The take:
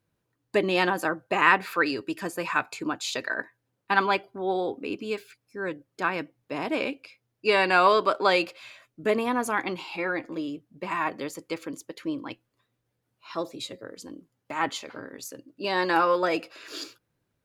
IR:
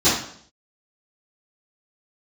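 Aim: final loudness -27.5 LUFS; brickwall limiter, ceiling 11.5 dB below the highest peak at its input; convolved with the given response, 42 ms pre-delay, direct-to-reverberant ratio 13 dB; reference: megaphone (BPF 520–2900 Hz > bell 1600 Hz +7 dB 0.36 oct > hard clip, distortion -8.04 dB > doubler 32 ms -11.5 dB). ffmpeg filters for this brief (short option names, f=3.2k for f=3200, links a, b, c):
-filter_complex "[0:a]alimiter=limit=-16dB:level=0:latency=1,asplit=2[a][b];[1:a]atrim=start_sample=2205,adelay=42[c];[b][c]afir=irnorm=-1:irlink=0,volume=-33dB[d];[a][d]amix=inputs=2:normalize=0,highpass=520,lowpass=2.9k,equalizer=f=1.6k:t=o:w=0.36:g=7,asoftclip=type=hard:threshold=-26dB,asplit=2[e][f];[f]adelay=32,volume=-11.5dB[g];[e][g]amix=inputs=2:normalize=0,volume=5dB"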